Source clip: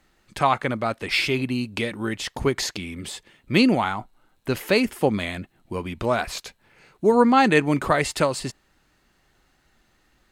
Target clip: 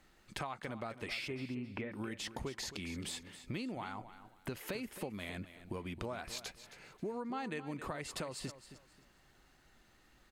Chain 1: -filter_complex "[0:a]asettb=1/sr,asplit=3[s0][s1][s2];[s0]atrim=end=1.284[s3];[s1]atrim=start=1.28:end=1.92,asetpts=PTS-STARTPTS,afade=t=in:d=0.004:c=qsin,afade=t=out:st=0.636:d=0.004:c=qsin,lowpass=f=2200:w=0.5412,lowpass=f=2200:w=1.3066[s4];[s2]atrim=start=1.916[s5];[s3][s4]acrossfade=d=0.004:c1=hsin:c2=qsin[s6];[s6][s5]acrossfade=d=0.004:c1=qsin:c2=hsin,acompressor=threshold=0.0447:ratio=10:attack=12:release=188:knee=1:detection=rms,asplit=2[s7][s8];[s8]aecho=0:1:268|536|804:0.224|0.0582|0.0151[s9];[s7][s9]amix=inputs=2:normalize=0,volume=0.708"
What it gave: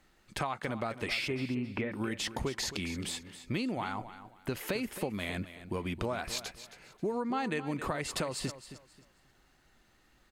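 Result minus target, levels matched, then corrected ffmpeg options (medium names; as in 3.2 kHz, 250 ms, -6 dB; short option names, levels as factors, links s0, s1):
compression: peak gain reduction -7 dB
-filter_complex "[0:a]asettb=1/sr,asplit=3[s0][s1][s2];[s0]atrim=end=1.284[s3];[s1]atrim=start=1.28:end=1.92,asetpts=PTS-STARTPTS,afade=t=in:d=0.004:c=qsin,afade=t=out:st=0.636:d=0.004:c=qsin,lowpass=f=2200:w=0.5412,lowpass=f=2200:w=1.3066[s4];[s2]atrim=start=1.916[s5];[s3][s4]acrossfade=d=0.004:c1=hsin:c2=qsin[s6];[s6][s5]acrossfade=d=0.004:c1=qsin:c2=hsin,acompressor=threshold=0.0178:ratio=10:attack=12:release=188:knee=1:detection=rms,asplit=2[s7][s8];[s8]aecho=0:1:268|536|804:0.224|0.0582|0.0151[s9];[s7][s9]amix=inputs=2:normalize=0,volume=0.708"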